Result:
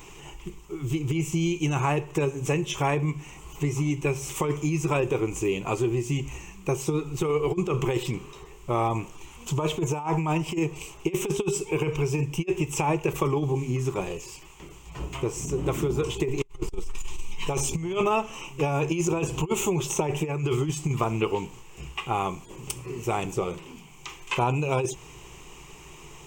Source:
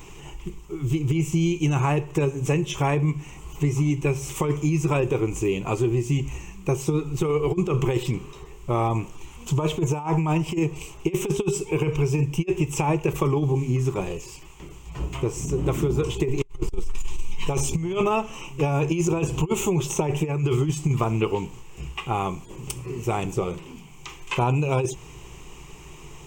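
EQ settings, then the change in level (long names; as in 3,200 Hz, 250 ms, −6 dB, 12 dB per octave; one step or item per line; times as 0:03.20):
low-shelf EQ 270 Hz −6 dB
0.0 dB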